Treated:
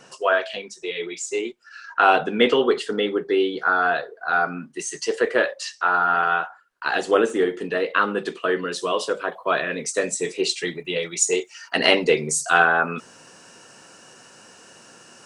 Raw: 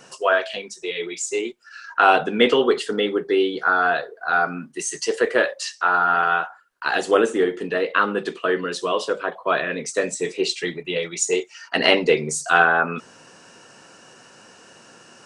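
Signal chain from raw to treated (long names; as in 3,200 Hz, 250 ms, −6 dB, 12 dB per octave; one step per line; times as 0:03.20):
high-shelf EQ 8,600 Hz −6 dB, from 0:07.30 +3.5 dB, from 0:08.78 +10 dB
level −1 dB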